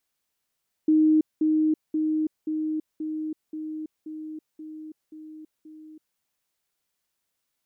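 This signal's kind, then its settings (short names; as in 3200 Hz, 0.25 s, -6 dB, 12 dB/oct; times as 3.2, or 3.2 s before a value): level ladder 311 Hz -15.5 dBFS, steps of -3 dB, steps 10, 0.33 s 0.20 s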